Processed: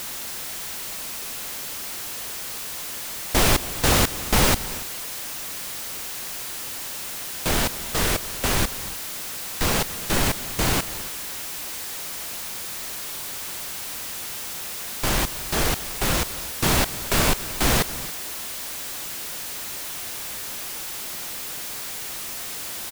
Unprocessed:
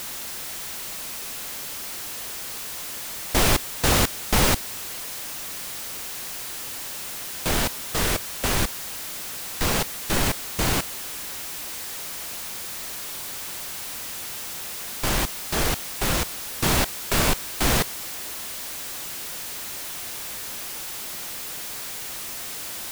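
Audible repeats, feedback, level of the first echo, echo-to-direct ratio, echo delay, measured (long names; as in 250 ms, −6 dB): 2, repeats not evenly spaced, −19.5 dB, −16.0 dB, 232 ms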